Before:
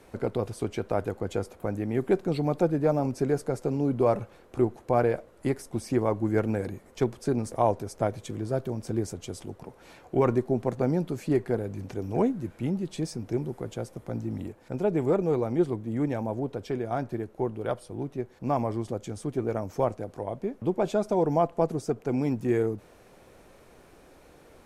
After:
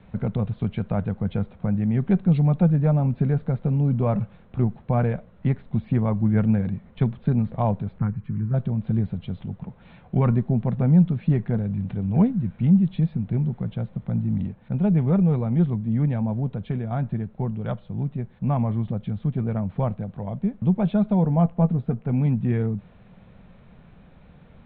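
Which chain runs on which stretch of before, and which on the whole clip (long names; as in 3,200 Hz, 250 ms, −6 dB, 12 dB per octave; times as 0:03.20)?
0:07.98–0:08.54: phaser with its sweep stopped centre 1,500 Hz, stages 4 + dynamic equaliser 2,300 Hz, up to −5 dB, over −57 dBFS, Q 2
0:21.23–0:22.12: low-pass filter 2,600 Hz 6 dB per octave + double-tracking delay 17 ms −10.5 dB
whole clip: Butterworth low-pass 3,900 Hz 96 dB per octave; low shelf with overshoot 250 Hz +9 dB, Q 3; level −1 dB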